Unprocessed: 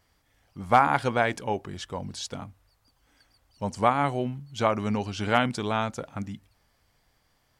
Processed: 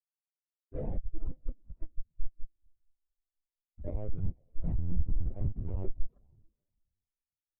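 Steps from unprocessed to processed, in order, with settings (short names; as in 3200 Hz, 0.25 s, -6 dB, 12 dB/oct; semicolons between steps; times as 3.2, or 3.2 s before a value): gliding pitch shift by -11 st ending unshifted; low-pass opened by the level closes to 1800 Hz, open at -19.5 dBFS; de-hum 322.8 Hz, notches 8; dynamic EQ 260 Hz, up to -3 dB, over -43 dBFS, Q 5.5; auto swell 0.143 s; in parallel at +2.5 dB: compressor 10:1, threshold -38 dBFS, peak gain reduction 18.5 dB; on the sum: Schmitt trigger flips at -25.5 dBFS; diffused feedback echo 0.456 s, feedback 41%, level -13 dB; on a send at -24 dB: reverb RT60 1.3 s, pre-delay 0.107 s; on the sum: LPC vocoder at 8 kHz pitch kept; spectral expander 2.5:1; gain +2.5 dB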